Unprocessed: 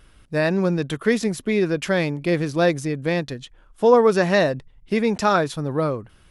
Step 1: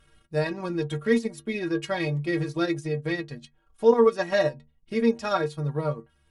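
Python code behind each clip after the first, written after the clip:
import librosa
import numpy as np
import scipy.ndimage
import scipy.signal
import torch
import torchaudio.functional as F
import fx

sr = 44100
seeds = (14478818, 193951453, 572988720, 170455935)

y = fx.stiff_resonator(x, sr, f0_hz=69.0, decay_s=0.41, stiffness=0.03)
y = fx.transient(y, sr, attack_db=-1, sustain_db=-8)
y = y * 10.0 ** (4.5 / 20.0)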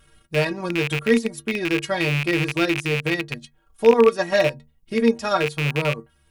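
y = fx.rattle_buzz(x, sr, strikes_db=-33.0, level_db=-18.0)
y = fx.high_shelf(y, sr, hz=9100.0, db=8.5)
y = y * 10.0 ** (4.0 / 20.0)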